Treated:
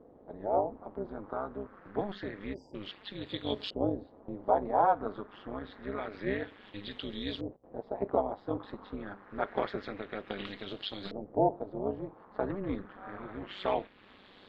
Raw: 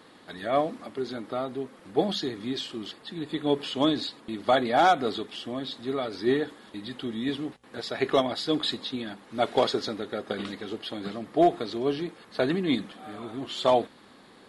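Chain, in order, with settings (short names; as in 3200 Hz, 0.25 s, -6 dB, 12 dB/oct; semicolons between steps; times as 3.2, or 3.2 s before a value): LFO low-pass saw up 0.27 Hz 490–4300 Hz; in parallel at +0.5 dB: compressor, threshold -34 dBFS, peak gain reduction 21 dB; on the sum: AM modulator 200 Hz, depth 80%; spectral delete 2.54–2.75, 1000–4700 Hz; gain -7.5 dB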